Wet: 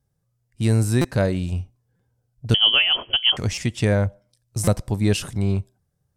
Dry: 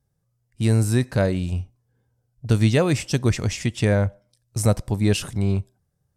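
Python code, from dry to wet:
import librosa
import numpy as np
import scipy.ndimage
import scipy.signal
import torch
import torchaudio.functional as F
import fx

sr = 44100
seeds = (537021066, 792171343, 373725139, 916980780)

y = fx.freq_invert(x, sr, carrier_hz=3200, at=(2.54, 3.37))
y = fx.dynamic_eq(y, sr, hz=1900.0, q=1.1, threshold_db=-54.0, ratio=4.0, max_db=-6, at=(4.05, 4.63))
y = fx.buffer_glitch(y, sr, at_s=(1.01, 1.96, 3.54, 4.64), block=256, repeats=5)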